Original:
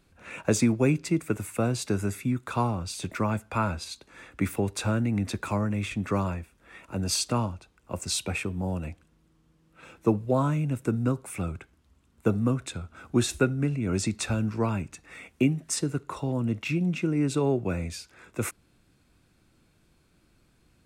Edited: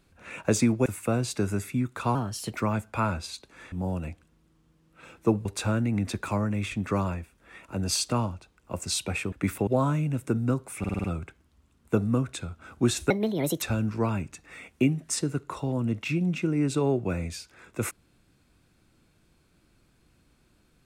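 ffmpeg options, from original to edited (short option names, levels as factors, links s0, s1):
-filter_complex "[0:a]asplit=15[s0][s1][s2][s3][s4][s5][s6][s7][s8][s9][s10][s11][s12][s13][s14];[s0]atrim=end=0.862[s15];[s1]atrim=start=1.368:end=2.664[s16];[s2]atrim=start=2.66:end=3.13,asetpts=PTS-STARTPTS,asetrate=51597,aresample=44100,atrim=end_sample=17715,asetpts=PTS-STARTPTS[s17];[s3]atrim=start=3.126:end=4.302[s18];[s4]atrim=start=8.518:end=10.252[s19];[s5]atrim=start=4.648:end=8.522[s20];[s6]atrim=start=4.298:end=4.652[s21];[s7]atrim=start=10.248:end=11.422[s22];[s8]atrim=start=11.368:end=11.422[s23];[s9]atrim=start=11.368:end=11.422[s24];[s10]atrim=start=11.368:end=11.422[s25];[s11]atrim=start=11.368:end=11.422[s26];[s12]atrim=start=11.368:end=13.434[s27];[s13]atrim=start=13.43:end=14.22,asetpts=PTS-STARTPTS,asetrate=67032,aresample=44100,atrim=end_sample=22920,asetpts=PTS-STARTPTS[s28];[s14]atrim=start=14.216[s29];[s15][s16]acrossfade=d=0.004:c1=hsin:c2=hsin[s30];[s30][s17]acrossfade=d=0.004:c1=hsin:c2=hsin[s31];[s31][s18]acrossfade=d=0.004:c1=hsin:c2=hsin[s32];[s32][s19]acrossfade=d=0.004:c1=hsin:c2=hsin[s33];[s33][s20]acrossfade=d=0.004:c1=hsin:c2=hsin[s34];[s34][s21]acrossfade=d=0.004:c1=hsin:c2=hsin[s35];[s35][s22]acrossfade=d=0.004:c1=hsin:c2=hsin[s36];[s36][s23]acrossfade=d=0.004:c1=hsin:c2=hsin[s37];[s37][s24]acrossfade=d=0.004:c1=hsin:c2=hsin[s38];[s38][s25]acrossfade=d=0.004:c1=hsin:c2=hsin[s39];[s39][s26]acrossfade=d=0.004:c1=hsin:c2=hsin[s40];[s40][s27]acrossfade=d=0.004:c1=hsin:c2=hsin[s41];[s41][s28]acrossfade=d=0.004:c1=hsin:c2=hsin[s42];[s42][s29]acrossfade=d=0.004:c1=hsin:c2=hsin"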